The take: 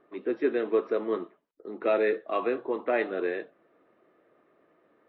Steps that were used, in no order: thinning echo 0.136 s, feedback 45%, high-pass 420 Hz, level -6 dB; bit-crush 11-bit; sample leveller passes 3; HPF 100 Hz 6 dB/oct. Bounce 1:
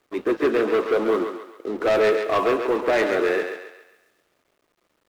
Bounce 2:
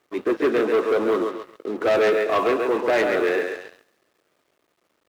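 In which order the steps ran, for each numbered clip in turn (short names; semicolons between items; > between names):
HPF > sample leveller > thinning echo > bit-crush; thinning echo > sample leveller > bit-crush > HPF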